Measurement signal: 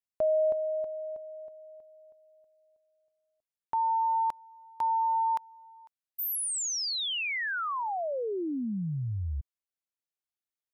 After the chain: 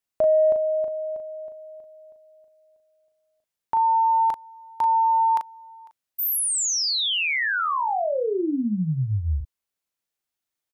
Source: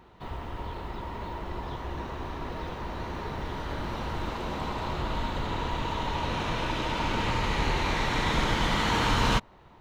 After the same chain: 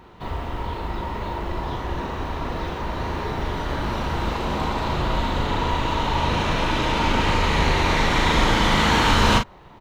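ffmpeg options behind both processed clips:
-filter_complex "[0:a]asplit=2[a][b];[b]adelay=38,volume=-6dB[c];[a][c]amix=inputs=2:normalize=0,acontrast=48,volume=1dB"

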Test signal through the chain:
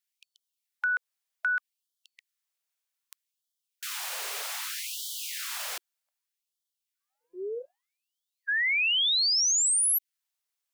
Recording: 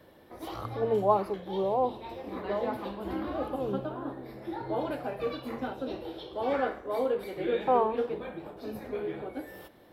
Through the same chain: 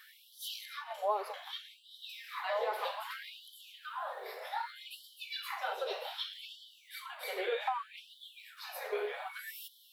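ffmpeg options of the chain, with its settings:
-af "acompressor=threshold=-32dB:ratio=6,tiltshelf=f=850:g=-5.5,afftfilt=real='re*gte(b*sr/1024,370*pow(3000/370,0.5+0.5*sin(2*PI*0.64*pts/sr)))':imag='im*gte(b*sr/1024,370*pow(3000/370,0.5+0.5*sin(2*PI*0.64*pts/sr)))':win_size=1024:overlap=0.75,volume=4.5dB"

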